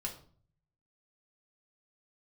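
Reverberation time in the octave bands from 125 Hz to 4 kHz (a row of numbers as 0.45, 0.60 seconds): 1.0, 0.65, 0.50, 0.45, 0.35, 0.35 seconds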